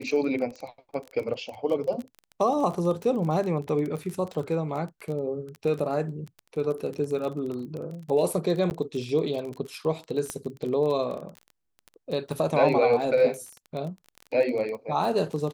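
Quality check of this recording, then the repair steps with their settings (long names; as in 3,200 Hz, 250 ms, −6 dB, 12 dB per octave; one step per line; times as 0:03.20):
surface crackle 24 per second −31 dBFS
0:08.70–0:08.71: drop-out 9.8 ms
0:10.30: click −17 dBFS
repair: click removal
repair the gap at 0:08.70, 9.8 ms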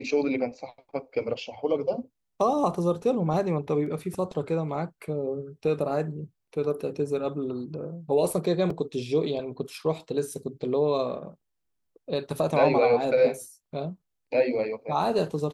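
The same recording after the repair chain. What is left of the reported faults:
none of them is left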